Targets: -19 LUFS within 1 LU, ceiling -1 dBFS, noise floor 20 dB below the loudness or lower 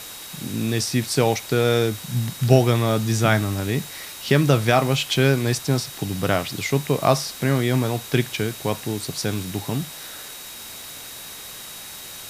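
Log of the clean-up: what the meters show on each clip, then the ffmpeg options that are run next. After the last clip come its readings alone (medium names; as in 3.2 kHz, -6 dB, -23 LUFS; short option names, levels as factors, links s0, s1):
steady tone 3.8 kHz; tone level -43 dBFS; noise floor -38 dBFS; noise floor target -42 dBFS; loudness -22.0 LUFS; peak level -2.5 dBFS; loudness target -19.0 LUFS
-> -af "bandreject=f=3800:w=30"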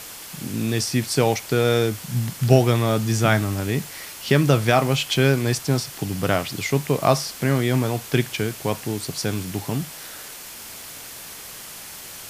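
steady tone not found; noise floor -38 dBFS; noise floor target -42 dBFS
-> -af "afftdn=nr=6:nf=-38"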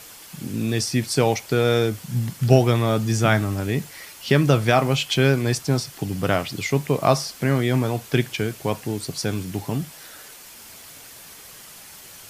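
noise floor -43 dBFS; loudness -22.0 LUFS; peak level -3.0 dBFS; loudness target -19.0 LUFS
-> -af "volume=1.41,alimiter=limit=0.891:level=0:latency=1"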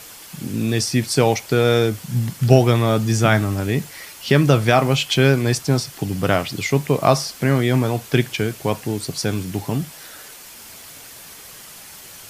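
loudness -19.0 LUFS; peak level -1.0 dBFS; noise floor -40 dBFS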